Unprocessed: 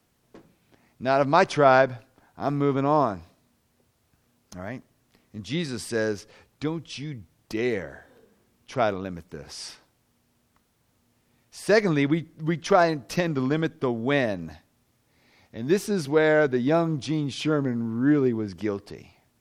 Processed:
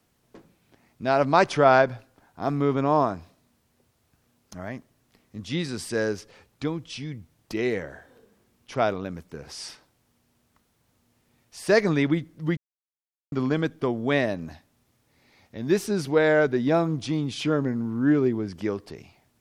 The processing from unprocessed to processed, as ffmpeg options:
-filter_complex "[0:a]asplit=3[s0][s1][s2];[s0]atrim=end=12.57,asetpts=PTS-STARTPTS,afade=t=out:st=12.566:d=0.004:c=hsin[s3];[s1]atrim=start=12.57:end=13.32,asetpts=PTS-STARTPTS,volume=0[s4];[s2]atrim=start=13.32,asetpts=PTS-STARTPTS,afade=t=in:d=0.004:c=hsin[s5];[s3][s4][s5]concat=n=3:v=0:a=1"

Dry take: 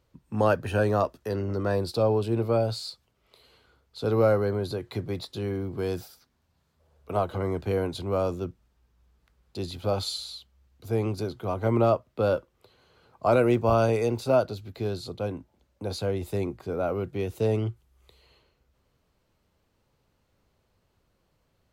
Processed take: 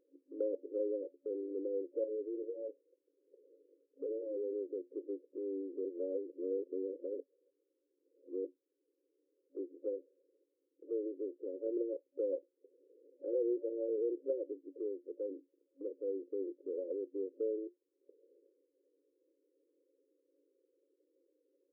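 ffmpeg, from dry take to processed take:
-filter_complex "[0:a]asettb=1/sr,asplit=3[s0][s1][s2];[s0]atrim=end=2.044[s3];[s1]atrim=start=2.04:end=4.53,asetpts=PTS-STARTPTS,afade=t=in:d=0.004:c=qsin,afade=t=out:st=2.486:d=0.004:c=qsin,aeval=exprs='0.075*(abs(mod(val(0)/0.075+3,4)-2)-1)':c=same[s4];[s2]atrim=start=4.526[s5];[s3][s4]acrossfade=d=0.004:c1=hsin:c2=qsin[s6];[s6][s5]acrossfade=d=0.004:c1=qsin:c2=hsin,asettb=1/sr,asplit=3[s7][s8][s9];[s7]atrim=end=13.984[s10];[s8]atrim=start=13.98:end=14.8,asetpts=PTS-STARTPTS,afade=t=in:d=0.004:c=qsin,afade=t=out:st=0.816:d=0.004:c=qsin,equalizer=f=250:w=1.5:g=7.5[s11];[s9]atrim=start=14.796[s12];[s10][s11]acrossfade=d=0.004:c1=hsin:c2=qsin[s13];[s13][s12]acrossfade=d=0.004:c1=qsin:c2=hsin,asplit=3[s14][s15][s16];[s14]atrim=end=5.852[s17];[s15]atrim=start=5.848:end=8.452,asetpts=PTS-STARTPTS,areverse[s18];[s16]atrim=start=8.448[s19];[s17][s18]acrossfade=d=0.004:c1=hsin:c2=hsin[s20];[s20][s19]acrossfade=d=0.004:c1=hsin:c2=hsin,afftfilt=real='re*between(b*sr/4096,270,560)':imag='im*between(b*sr/4096,270,560)':win_size=4096:overlap=0.75,acompressor=threshold=0.00141:ratio=1.5,volume=1.33"

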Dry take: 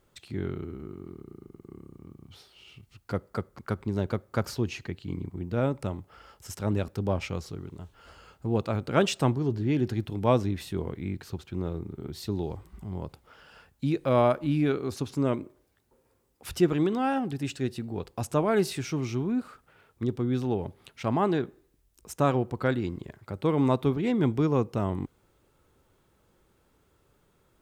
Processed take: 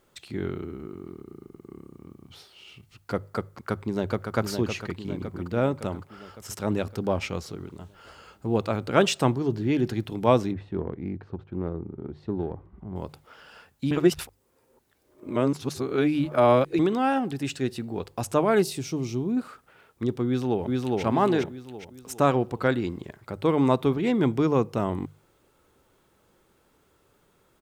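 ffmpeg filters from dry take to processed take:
-filter_complex "[0:a]asplit=2[s0][s1];[s1]afade=t=in:st=3.55:d=0.01,afade=t=out:st=4.35:d=0.01,aecho=0:1:560|1120|1680|2240|2800|3360|3920|4480:0.501187|0.300712|0.180427|0.108256|0.0649539|0.0389723|0.0233834|0.01403[s2];[s0][s2]amix=inputs=2:normalize=0,asettb=1/sr,asplit=3[s3][s4][s5];[s3]atrim=end=10.524[s6];[s4]atrim=start=10.52:end=12.96,asetpts=PTS-STARTPTS,afade=t=in:d=0.004:c=qsin,afade=t=out:st=2.436:d=0.004:c=qsin,adynamicsmooth=sensitivity=1:basefreq=1100[s7];[s5]atrim=start=12.956[s8];[s6][s7]acrossfade=d=0.004:c1=hsin:c2=qsin[s9];[s9][s8]acrossfade=d=0.004:c1=qsin:c2=hsin,asettb=1/sr,asplit=3[s10][s11][s12];[s10]atrim=end=18.624[s13];[s11]atrim=start=18.62:end=19.37,asetpts=PTS-STARTPTS,afade=t=in:d=0.004:c=qsin,afade=t=out:st=0.746:d=0.004:c=qsin,equalizer=f=1600:w=0.9:g=-13[s14];[s12]atrim=start=19.366[s15];[s13][s14]acrossfade=d=0.004:c1=hsin:c2=qsin[s16];[s16][s15]acrossfade=d=0.004:c1=qsin:c2=hsin,asplit=2[s17][s18];[s18]afade=t=in:st=20.26:d=0.01,afade=t=out:st=21.02:d=0.01,aecho=0:1:410|820|1230|1640|2050|2460:0.891251|0.401063|0.180478|0.0812152|0.0365469|0.0164461[s19];[s17][s19]amix=inputs=2:normalize=0,asplit=3[s20][s21][s22];[s20]atrim=end=13.912[s23];[s21]atrim=start=13.908:end=16.792,asetpts=PTS-STARTPTS,areverse[s24];[s22]atrim=start=16.788[s25];[s23][s24]acrossfade=d=0.004:c1=hsin:c2=hsin[s26];[s26][s25]acrossfade=d=0.004:c1=hsin:c2=hsin,lowshelf=f=150:g=-6.5,bandreject=f=50:t=h:w=6,bandreject=f=100:t=h:w=6,bandreject=f=150:t=h:w=6,volume=1.58"

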